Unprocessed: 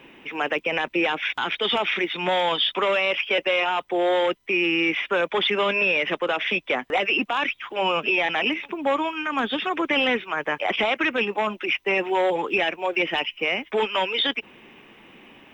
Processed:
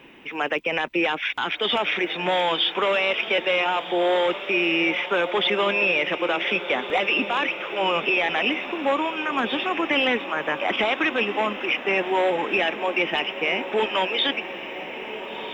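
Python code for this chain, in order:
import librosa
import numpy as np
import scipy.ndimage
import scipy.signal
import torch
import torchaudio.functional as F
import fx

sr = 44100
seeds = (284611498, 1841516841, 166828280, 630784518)

y = fx.echo_diffused(x, sr, ms=1477, feedback_pct=60, wet_db=-11.0)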